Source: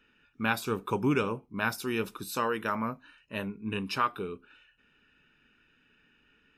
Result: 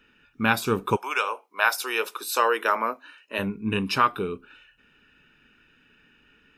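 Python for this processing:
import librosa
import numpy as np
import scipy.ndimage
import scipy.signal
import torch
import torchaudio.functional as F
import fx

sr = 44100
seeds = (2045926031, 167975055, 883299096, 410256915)

y = fx.highpass(x, sr, hz=fx.line((0.95, 710.0), (3.38, 290.0)), slope=24, at=(0.95, 3.38), fade=0.02)
y = fx.rider(y, sr, range_db=10, speed_s=2.0)
y = y * 10.0 ** (8.5 / 20.0)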